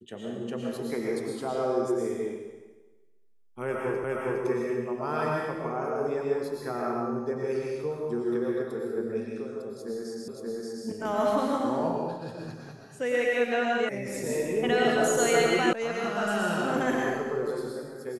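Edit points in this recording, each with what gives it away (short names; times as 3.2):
4.04 repeat of the last 0.41 s
10.28 repeat of the last 0.58 s
13.89 sound cut off
15.73 sound cut off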